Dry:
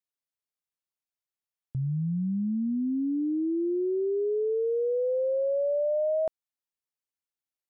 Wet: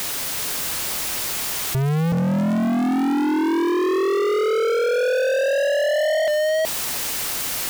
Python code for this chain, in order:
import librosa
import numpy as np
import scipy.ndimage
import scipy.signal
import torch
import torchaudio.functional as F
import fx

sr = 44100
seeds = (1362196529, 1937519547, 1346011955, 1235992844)

p1 = x + 0.5 * 10.0 ** (-42.0 / 20.0) * np.sign(x)
p2 = p1 + fx.echo_single(p1, sr, ms=373, db=-3.5, dry=0)
p3 = fx.leveller(p2, sr, passes=5)
p4 = (np.mod(10.0 ** (35.5 / 20.0) * p3 + 1.0, 2.0) - 1.0) / 10.0 ** (35.5 / 20.0)
p5 = p3 + (p4 * librosa.db_to_amplitude(-9.0))
y = fx.env_flatten(p5, sr, amount_pct=50)